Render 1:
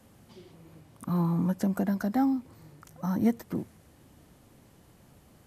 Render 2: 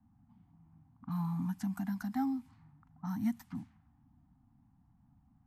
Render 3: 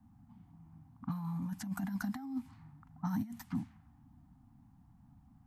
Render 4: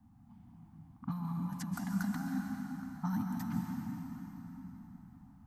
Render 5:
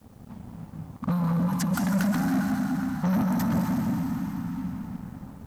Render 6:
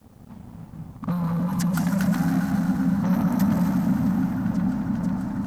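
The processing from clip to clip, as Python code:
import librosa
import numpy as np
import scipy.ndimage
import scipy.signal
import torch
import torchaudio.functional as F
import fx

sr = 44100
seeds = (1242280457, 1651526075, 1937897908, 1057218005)

y1 = scipy.signal.sosfilt(scipy.signal.ellip(3, 1.0, 40, [270.0, 770.0], 'bandstop', fs=sr, output='sos'), x)
y1 = fx.env_lowpass(y1, sr, base_hz=610.0, full_db=-27.5)
y1 = y1 * librosa.db_to_amplitude(-7.0)
y2 = fx.over_compress(y1, sr, threshold_db=-37.0, ratio=-0.5)
y2 = y2 * librosa.db_to_amplitude(1.5)
y3 = fx.rev_plate(y2, sr, seeds[0], rt60_s=4.3, hf_ratio=0.75, predelay_ms=115, drr_db=0.5)
y4 = fx.leveller(y3, sr, passes=3)
y4 = fx.quant_dither(y4, sr, seeds[1], bits=12, dither='triangular')
y4 = y4 * librosa.db_to_amplitude(4.5)
y5 = fx.echo_opening(y4, sr, ms=491, hz=200, octaves=1, feedback_pct=70, wet_db=0)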